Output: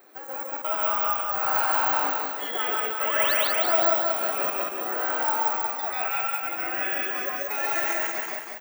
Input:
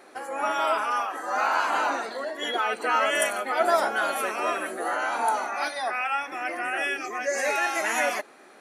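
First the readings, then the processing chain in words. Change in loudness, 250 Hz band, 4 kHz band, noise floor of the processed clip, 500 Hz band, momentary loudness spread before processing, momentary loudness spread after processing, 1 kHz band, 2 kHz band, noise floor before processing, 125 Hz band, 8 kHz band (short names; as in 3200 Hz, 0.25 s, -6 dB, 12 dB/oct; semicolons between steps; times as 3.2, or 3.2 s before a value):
+2.5 dB, -2.5 dB, 0.0 dB, -37 dBFS, -2.0 dB, 7 LU, 7 LU, -2.0 dB, -2.5 dB, -51 dBFS, n/a, -3.0 dB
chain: step gate "xx.xx.xx" 70 bpm -60 dB; painted sound rise, 3.06–3.34, 790–5000 Hz -26 dBFS; careless resampling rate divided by 2×, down filtered, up zero stuff; loudspeakers at several distances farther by 47 m -1 dB, 58 m -5 dB; lo-fi delay 0.187 s, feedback 55%, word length 7-bit, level -3.5 dB; gain -6.5 dB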